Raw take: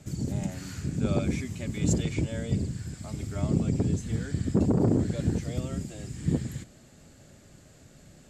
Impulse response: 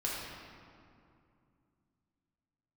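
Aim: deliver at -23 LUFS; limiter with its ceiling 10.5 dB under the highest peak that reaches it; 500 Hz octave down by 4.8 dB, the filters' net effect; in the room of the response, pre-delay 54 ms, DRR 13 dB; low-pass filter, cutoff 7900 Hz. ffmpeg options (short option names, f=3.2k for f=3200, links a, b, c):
-filter_complex "[0:a]lowpass=7.9k,equalizer=f=500:t=o:g=-6.5,alimiter=limit=-24dB:level=0:latency=1,asplit=2[a][b];[1:a]atrim=start_sample=2205,adelay=54[c];[b][c]afir=irnorm=-1:irlink=0,volume=-18dB[d];[a][d]amix=inputs=2:normalize=0,volume=11dB"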